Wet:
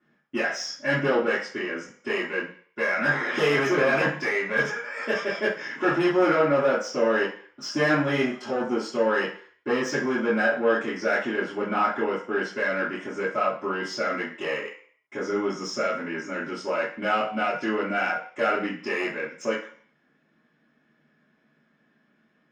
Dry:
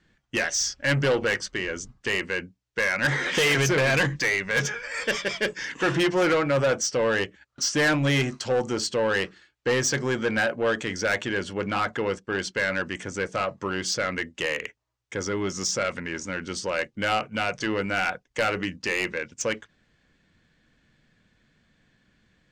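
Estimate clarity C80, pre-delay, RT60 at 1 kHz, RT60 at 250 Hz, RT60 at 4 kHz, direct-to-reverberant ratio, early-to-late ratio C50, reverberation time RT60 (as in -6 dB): 11.5 dB, 3 ms, 0.55 s, 0.40 s, 0.55 s, -10.0 dB, 6.5 dB, 0.50 s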